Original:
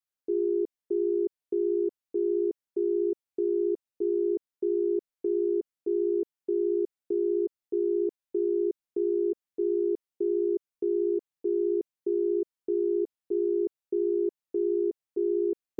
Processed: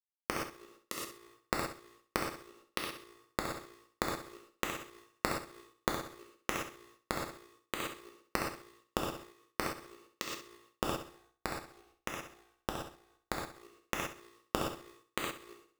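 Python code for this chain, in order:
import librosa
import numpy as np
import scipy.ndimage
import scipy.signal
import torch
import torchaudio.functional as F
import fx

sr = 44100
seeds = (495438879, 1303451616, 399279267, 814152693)

y = fx.bin_compress(x, sr, power=0.6)
y = fx.noise_reduce_blind(y, sr, reduce_db=9)
y = scipy.signal.sosfilt(scipy.signal.butter(4, 480.0, 'highpass', fs=sr, output='sos'), y)
y = fx.hpss(y, sr, part='percussive', gain_db=-13)
y = fx.quant_companded(y, sr, bits=2)
y = fx.tube_stage(y, sr, drive_db=31.0, bias=0.65, at=(11.04, 13.55))
y = fx.gate_flip(y, sr, shuts_db=-34.0, range_db=-39)
y = fx.room_flutter(y, sr, wall_m=11.3, rt60_s=0.44)
y = fx.rev_gated(y, sr, seeds[0], gate_ms=140, shape='flat', drr_db=-0.5)
y = fx.am_noise(y, sr, seeds[1], hz=5.7, depth_pct=55)
y = y * 10.0 ** (17.0 / 20.0)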